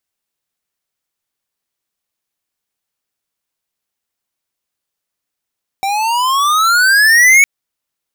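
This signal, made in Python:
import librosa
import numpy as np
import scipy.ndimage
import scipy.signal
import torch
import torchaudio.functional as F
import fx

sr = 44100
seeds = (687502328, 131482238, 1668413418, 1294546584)

y = fx.riser_tone(sr, length_s=1.61, level_db=-6.0, wave='square', hz=771.0, rise_st=18.5, swell_db=10.5)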